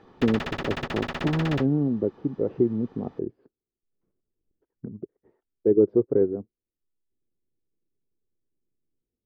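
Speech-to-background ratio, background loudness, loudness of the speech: 7.5 dB, −33.0 LKFS, −25.5 LKFS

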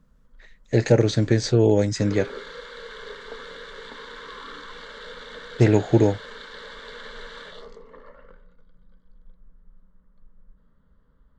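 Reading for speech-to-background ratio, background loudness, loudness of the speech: 19.0 dB, −39.5 LKFS, −20.5 LKFS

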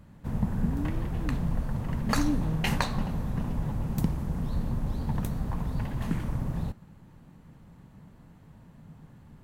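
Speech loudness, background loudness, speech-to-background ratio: −35.5 LKFS, −31.5 LKFS, −4.0 dB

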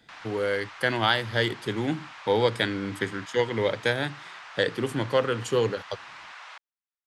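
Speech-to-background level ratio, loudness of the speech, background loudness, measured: 16.0 dB, −27.0 LKFS, −43.0 LKFS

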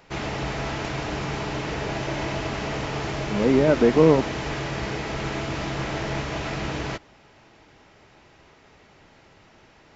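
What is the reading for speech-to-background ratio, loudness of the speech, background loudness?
9.5 dB, −19.5 LKFS, −29.0 LKFS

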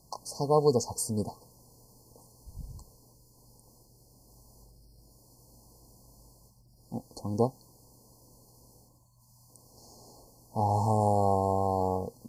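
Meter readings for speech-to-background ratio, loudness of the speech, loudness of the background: 17.0 dB, −29.0 LKFS, −46.0 LKFS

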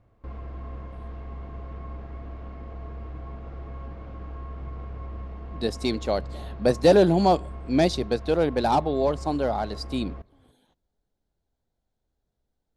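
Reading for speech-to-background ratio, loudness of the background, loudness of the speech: 15.0 dB, −39.0 LKFS, −24.0 LKFS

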